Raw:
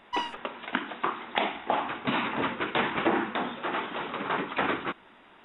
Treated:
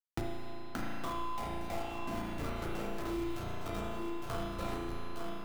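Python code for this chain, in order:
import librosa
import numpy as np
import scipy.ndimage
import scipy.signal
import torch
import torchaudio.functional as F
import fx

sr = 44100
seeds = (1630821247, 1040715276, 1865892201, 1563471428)

p1 = fx.spec_trails(x, sr, decay_s=0.63)
p2 = fx.noise_reduce_blind(p1, sr, reduce_db=29)
p3 = scipy.signal.sosfilt(scipy.signal.butter(12, 1500.0, 'lowpass', fs=sr, output='sos'), p2)
p4 = fx.notch(p3, sr, hz=960.0, q=7.4)
p5 = fx.dereverb_blind(p4, sr, rt60_s=0.57)
p6 = scipy.signal.sosfilt(scipy.signal.butter(4, 140.0, 'highpass', fs=sr, output='sos'), p5)
p7 = fx.level_steps(p6, sr, step_db=11)
p8 = p6 + (p7 * librosa.db_to_amplitude(2.0))
p9 = fx.schmitt(p8, sr, flips_db=-23.5)
p10 = fx.comb_fb(p9, sr, f0_hz=340.0, decay_s=0.97, harmonics='all', damping=0.0, mix_pct=90)
p11 = p10 + fx.echo_single(p10, sr, ms=860, db=-12.0, dry=0)
p12 = fx.rev_spring(p11, sr, rt60_s=1.3, pass_ms=(35,), chirp_ms=45, drr_db=-4.5)
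p13 = fx.band_squash(p12, sr, depth_pct=100)
y = p13 * librosa.db_to_amplitude(3.0)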